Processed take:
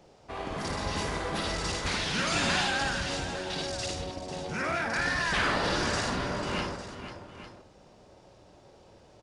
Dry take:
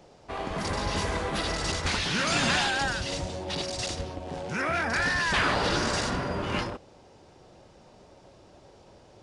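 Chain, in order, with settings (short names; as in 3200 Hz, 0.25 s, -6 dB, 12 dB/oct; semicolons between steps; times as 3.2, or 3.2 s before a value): tapped delay 54/495/853 ms -5.5/-10/-13.5 dB; gain -3.5 dB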